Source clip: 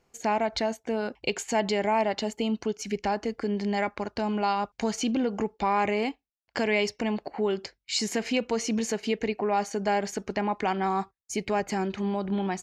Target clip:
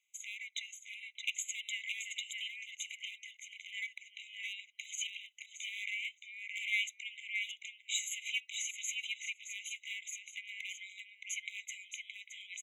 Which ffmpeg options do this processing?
-filter_complex "[0:a]asplit=2[a][b];[b]adelay=620,lowpass=f=4.6k:p=1,volume=-4dB,asplit=2[c][d];[d]adelay=620,lowpass=f=4.6k:p=1,volume=0.16,asplit=2[e][f];[f]adelay=620,lowpass=f=4.6k:p=1,volume=0.16[g];[a][c][e][g]amix=inputs=4:normalize=0,volume=18.5dB,asoftclip=hard,volume=-18.5dB,afftfilt=real='re*eq(mod(floor(b*sr/1024/2000),2),1)':imag='im*eq(mod(floor(b*sr/1024/2000),2),1)':win_size=1024:overlap=0.75,volume=-2dB"

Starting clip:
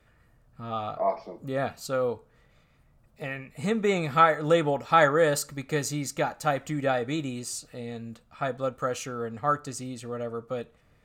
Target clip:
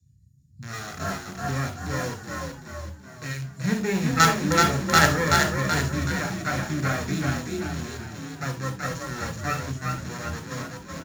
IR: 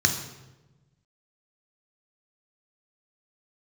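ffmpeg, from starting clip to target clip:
-filter_complex "[0:a]acrossover=split=210|5000[a][b][c];[b]acrusher=bits=3:dc=4:mix=0:aa=0.000001[d];[c]acompressor=threshold=-56dB:ratio=6[e];[a][d][e]amix=inputs=3:normalize=0,asplit=7[f][g][h][i][j][k][l];[g]adelay=378,afreqshift=39,volume=-3dB[m];[h]adelay=756,afreqshift=78,volume=-9.4dB[n];[i]adelay=1134,afreqshift=117,volume=-15.8dB[o];[j]adelay=1512,afreqshift=156,volume=-22.1dB[p];[k]adelay=1890,afreqshift=195,volume=-28.5dB[q];[l]adelay=2268,afreqshift=234,volume=-34.9dB[r];[f][m][n][o][p][q][r]amix=inputs=7:normalize=0[s];[1:a]atrim=start_sample=2205,atrim=end_sample=3969[t];[s][t]afir=irnorm=-1:irlink=0,volume=-11dB"

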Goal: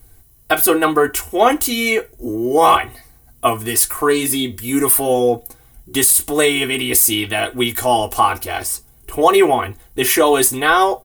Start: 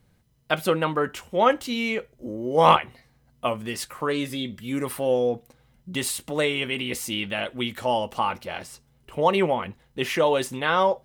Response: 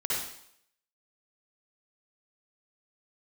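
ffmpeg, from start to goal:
-af "equalizer=f=130:w=0.76:g=-12,aecho=1:1:2.7:0.96,flanger=delay=8.2:depth=1.9:regen=-65:speed=0.92:shape=triangular,firequalizer=gain_entry='entry(110,0);entry(250,-6);entry(400,-10);entry(3100,-14);entry(9800,4);entry(14000,7)':delay=0.05:min_phase=1,alimiter=level_in=24dB:limit=-1dB:release=50:level=0:latency=1,volume=-1dB"

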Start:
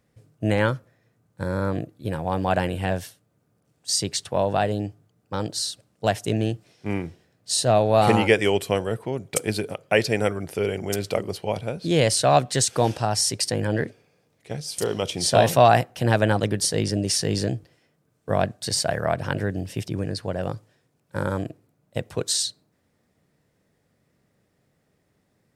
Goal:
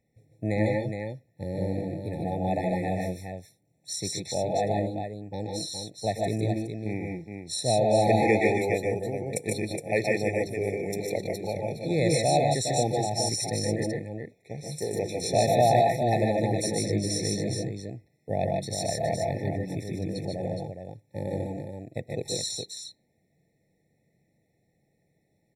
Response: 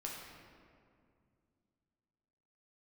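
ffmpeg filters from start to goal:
-filter_complex "[0:a]bandreject=f=3.7k:w=23,asplit=2[a][b];[b]aecho=0:1:126|148|154|416:0.398|0.631|0.531|0.473[c];[a][c]amix=inputs=2:normalize=0,afftfilt=real='re*eq(mod(floor(b*sr/1024/870),2),0)':imag='im*eq(mod(floor(b*sr/1024/870),2),0)':win_size=1024:overlap=0.75,volume=-6dB"

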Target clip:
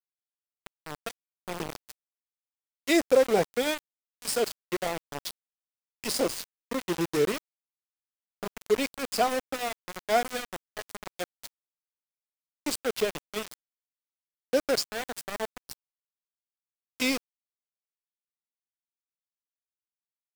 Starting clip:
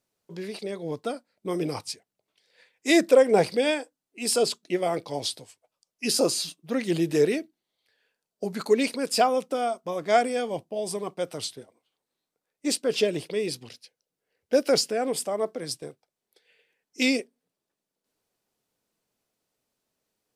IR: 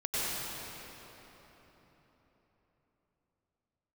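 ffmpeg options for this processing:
-filter_complex "[0:a]asettb=1/sr,asplit=3[a][b][c];[a]atrim=end=13.264[d];[b]atrim=start=13.26:end=15.51,asetpts=PTS-STARTPTS,afade=t=in:d=0.004:c=qsin,afade=t=out:st=2.246:d=0.004:c=qsin,adynamicequalizer=threshold=0.0178:dfrequency=290:dqfactor=0.93:tfrequency=290:tqfactor=0.93:attack=5:release=100:ratio=0.375:range=3:mode=cutabove:tftype=bell[e];[c]atrim=start=15.506[f];[d][e]acrossfade=d=0.004:c1=hsin:c2=qsin[g];[g][f]acrossfade=d=0.004:c1=qsin:c2=hsin,aeval=exprs='val(0)*gte(abs(val(0)),0.0668)':c=same,volume=-3.5dB"

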